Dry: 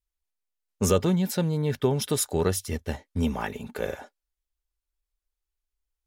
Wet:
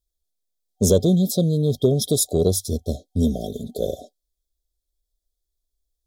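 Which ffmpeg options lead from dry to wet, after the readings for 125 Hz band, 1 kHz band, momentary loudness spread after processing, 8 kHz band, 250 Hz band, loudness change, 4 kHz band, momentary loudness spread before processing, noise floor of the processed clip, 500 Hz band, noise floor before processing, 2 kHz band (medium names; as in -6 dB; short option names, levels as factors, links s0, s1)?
+6.0 dB, -6.0 dB, 11 LU, +6.0 dB, +6.0 dB, +5.5 dB, +5.0 dB, 10 LU, -81 dBFS, +6.0 dB, under -85 dBFS, under -20 dB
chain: -af "afftfilt=real='re*(1-between(b*sr/4096,750,3200))':imag='im*(1-between(b*sr/4096,750,3200))':win_size=4096:overlap=0.75,acontrast=56"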